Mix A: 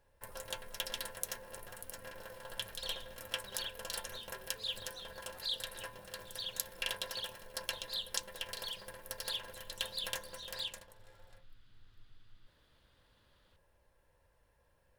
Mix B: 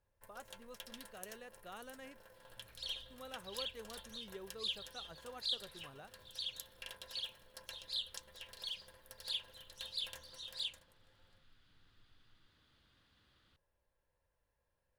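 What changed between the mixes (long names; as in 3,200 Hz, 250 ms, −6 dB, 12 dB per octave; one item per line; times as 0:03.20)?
speech +11.5 dB
first sound −12.0 dB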